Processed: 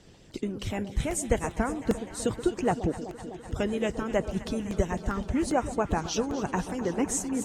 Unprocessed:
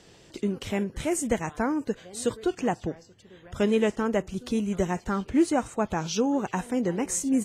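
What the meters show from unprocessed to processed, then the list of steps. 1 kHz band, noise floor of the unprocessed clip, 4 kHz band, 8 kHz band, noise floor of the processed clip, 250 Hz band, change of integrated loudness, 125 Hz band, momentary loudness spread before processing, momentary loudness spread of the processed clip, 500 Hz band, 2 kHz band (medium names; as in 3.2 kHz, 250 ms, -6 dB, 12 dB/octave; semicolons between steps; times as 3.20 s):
-0.5 dB, -55 dBFS, -1.5 dB, -1.0 dB, -49 dBFS, -3.5 dB, -2.0 dB, +1.5 dB, 8 LU, 6 LU, -2.0 dB, -1.5 dB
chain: harmonic-percussive split harmonic -12 dB; bass shelf 240 Hz +10 dB; echo whose repeats swap between lows and highs 126 ms, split 830 Hz, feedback 87%, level -12.5 dB; crackling interface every 0.40 s, samples 64, repeat, from 0.31 s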